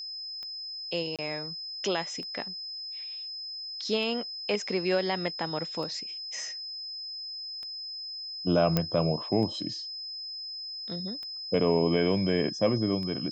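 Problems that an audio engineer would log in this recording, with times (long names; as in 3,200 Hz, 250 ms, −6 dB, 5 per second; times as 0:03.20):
scratch tick 33 1/3 rpm −28 dBFS
whistle 5,100 Hz −36 dBFS
0:01.16–0:01.19: drop-out 27 ms
0:08.77: click −11 dBFS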